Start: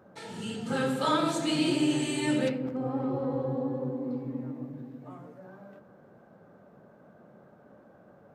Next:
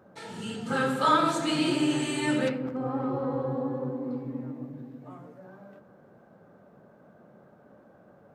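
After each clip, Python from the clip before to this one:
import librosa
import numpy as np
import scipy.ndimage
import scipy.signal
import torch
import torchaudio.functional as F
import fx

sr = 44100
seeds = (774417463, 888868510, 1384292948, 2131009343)

y = fx.dynamic_eq(x, sr, hz=1300.0, q=1.3, threshold_db=-49.0, ratio=4.0, max_db=7)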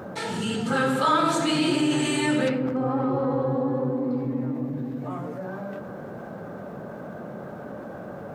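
y = fx.env_flatten(x, sr, amount_pct=50)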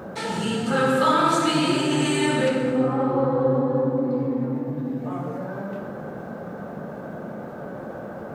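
y = fx.rev_plate(x, sr, seeds[0], rt60_s=2.0, hf_ratio=0.65, predelay_ms=0, drr_db=1.5)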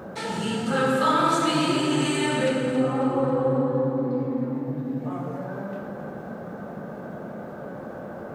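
y = fx.echo_feedback(x, sr, ms=273, feedback_pct=46, wet_db=-11)
y = F.gain(torch.from_numpy(y), -2.0).numpy()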